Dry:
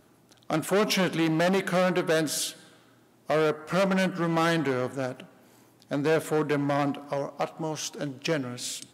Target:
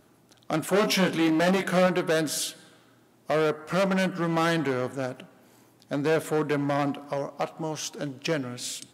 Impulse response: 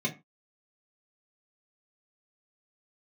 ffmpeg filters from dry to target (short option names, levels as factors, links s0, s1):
-filter_complex "[0:a]asettb=1/sr,asplit=3[s0][s1][s2];[s0]atrim=end=0.714[s3];[s1]atrim=start=0.71:end=1.87,asetpts=PTS-STARTPTS,afade=t=in:d=0.004:c=qsin,afade=t=out:st=1.156:d=0.004:c=qsin,asplit=2[s4][s5];[s5]adelay=22,volume=0.562[s6];[s4][s6]amix=inputs=2:normalize=0,atrim=end_sample=51156[s7];[s2]atrim=start=1.866[s8];[s3][s7]acrossfade=d=0.004:c1=hsin:c2=qsin[s9];[s9][s8]acrossfade=d=0.004:c1=qsin:c2=hsin"